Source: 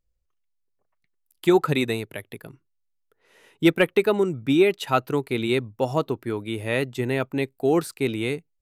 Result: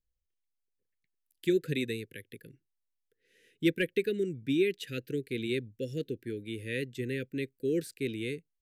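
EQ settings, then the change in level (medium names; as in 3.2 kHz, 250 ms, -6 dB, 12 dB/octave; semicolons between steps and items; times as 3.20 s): Chebyshev band-stop 510–1600 Hz, order 4; -8.5 dB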